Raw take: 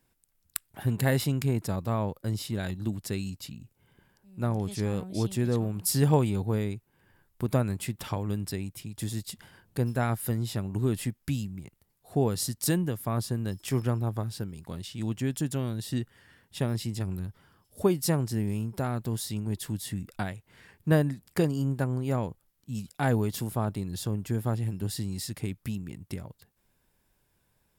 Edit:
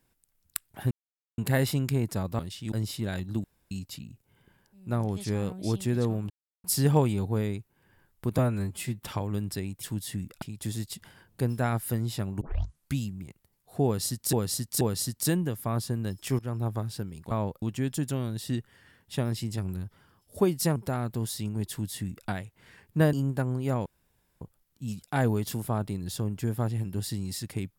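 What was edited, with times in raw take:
0:00.91: splice in silence 0.47 s
0:01.92–0:02.23: swap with 0:14.72–0:15.05
0:02.95–0:03.22: fill with room tone
0:05.81: splice in silence 0.34 s
0:07.55–0:07.97: time-stretch 1.5×
0:10.78: tape start 0.54 s
0:12.22–0:12.70: repeat, 3 plays
0:13.80–0:14.05: fade in, from −15.5 dB
0:18.19–0:18.67: remove
0:19.61–0:20.20: duplicate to 0:08.79
0:21.04–0:21.55: remove
0:22.28: splice in room tone 0.55 s

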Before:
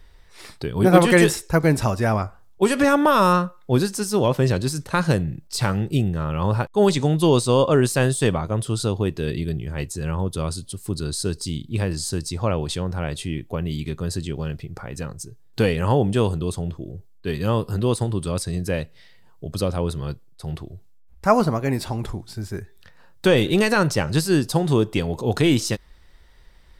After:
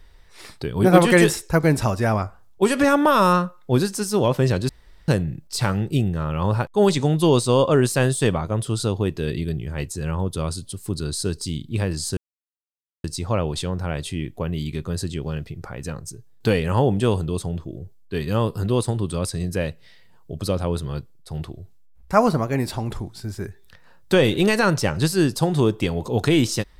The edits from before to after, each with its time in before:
0:04.69–0:05.08: fill with room tone
0:12.17: splice in silence 0.87 s

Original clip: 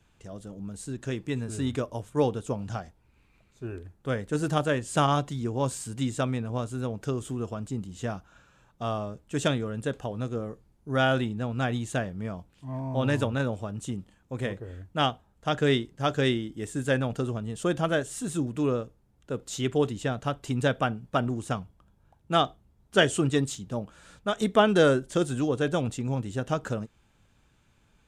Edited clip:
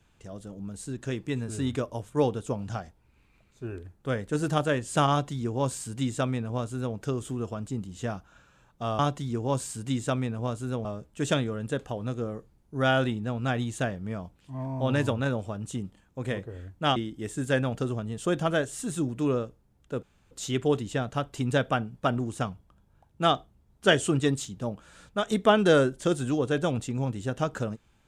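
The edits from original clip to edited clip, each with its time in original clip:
0:05.10–0:06.96: duplicate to 0:08.99
0:15.10–0:16.34: remove
0:19.41: splice in room tone 0.28 s

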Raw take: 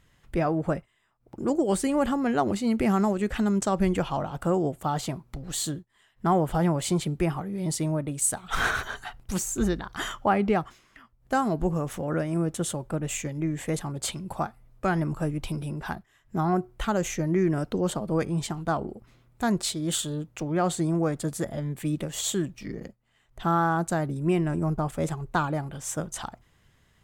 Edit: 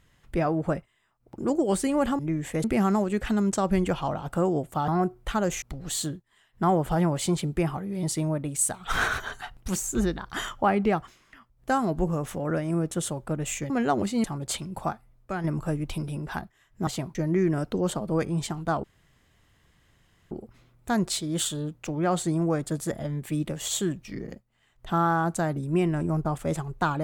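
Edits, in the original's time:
0:02.19–0:02.73: swap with 0:13.33–0:13.78
0:04.97–0:05.25: swap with 0:16.41–0:17.15
0:14.42–0:14.98: fade out quadratic, to −6.5 dB
0:18.84: splice in room tone 1.47 s

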